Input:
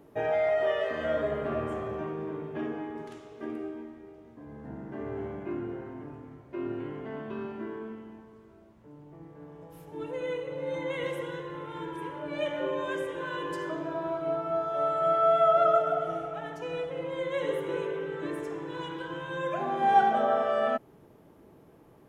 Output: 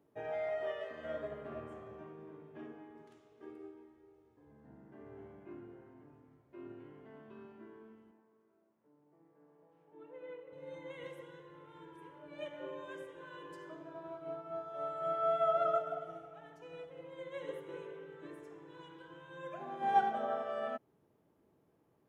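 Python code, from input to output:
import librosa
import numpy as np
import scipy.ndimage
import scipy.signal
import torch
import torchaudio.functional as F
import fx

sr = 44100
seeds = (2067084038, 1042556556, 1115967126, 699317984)

y = fx.comb(x, sr, ms=2.3, depth=0.65, at=(3.41, 4.51))
y = fx.bandpass_edges(y, sr, low_hz=240.0, high_hz=2200.0, at=(8.11, 10.53))
y = scipy.signal.sosfilt(scipy.signal.butter(2, 58.0, 'highpass', fs=sr, output='sos'), y)
y = fx.upward_expand(y, sr, threshold_db=-36.0, expansion=1.5)
y = F.gain(torch.from_numpy(y), -6.5).numpy()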